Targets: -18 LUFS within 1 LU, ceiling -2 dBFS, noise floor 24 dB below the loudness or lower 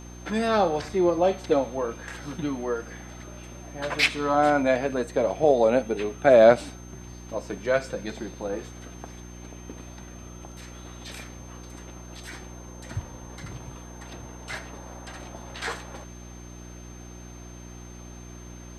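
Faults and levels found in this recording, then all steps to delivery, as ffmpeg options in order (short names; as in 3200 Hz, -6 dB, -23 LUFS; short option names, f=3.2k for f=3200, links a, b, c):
hum 60 Hz; harmonics up to 360 Hz; hum level -40 dBFS; steady tone 6300 Hz; tone level -50 dBFS; loudness -24.5 LUFS; peak -4.0 dBFS; loudness target -18.0 LUFS
-> -af "bandreject=f=60:t=h:w=4,bandreject=f=120:t=h:w=4,bandreject=f=180:t=h:w=4,bandreject=f=240:t=h:w=4,bandreject=f=300:t=h:w=4,bandreject=f=360:t=h:w=4"
-af "bandreject=f=6.3k:w=30"
-af "volume=6.5dB,alimiter=limit=-2dB:level=0:latency=1"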